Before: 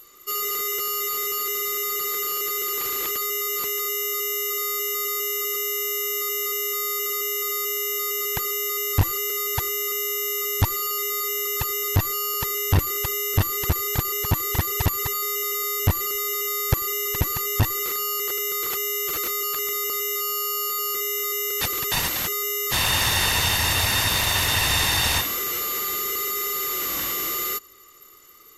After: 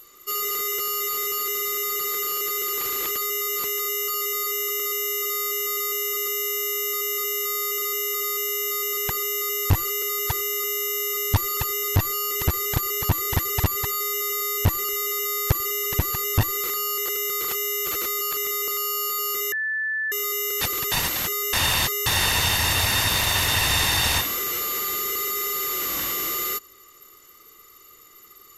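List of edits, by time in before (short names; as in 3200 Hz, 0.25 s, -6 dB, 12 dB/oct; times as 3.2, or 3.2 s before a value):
10.85–11.57 move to 4.08
12.31–13.53 cut
19.99–20.37 cut
21.12 add tone 1750 Hz -23 dBFS 0.60 s
22.53–23.06 reverse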